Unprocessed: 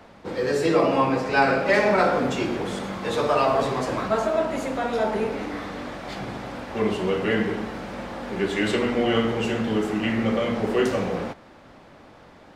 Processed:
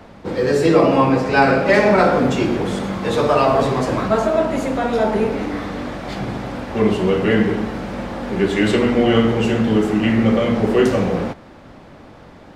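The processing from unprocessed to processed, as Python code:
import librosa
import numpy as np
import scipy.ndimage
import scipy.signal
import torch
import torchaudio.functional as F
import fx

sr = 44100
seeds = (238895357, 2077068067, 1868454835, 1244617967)

y = fx.low_shelf(x, sr, hz=350.0, db=6.5)
y = y * 10.0 ** (4.0 / 20.0)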